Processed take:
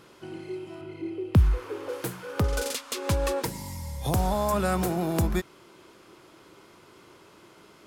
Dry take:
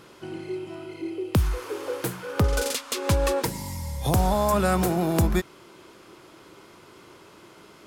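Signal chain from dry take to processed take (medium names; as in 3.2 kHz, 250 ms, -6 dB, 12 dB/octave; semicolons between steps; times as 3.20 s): 0.81–1.89 s: tone controls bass +7 dB, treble -8 dB; trim -3.5 dB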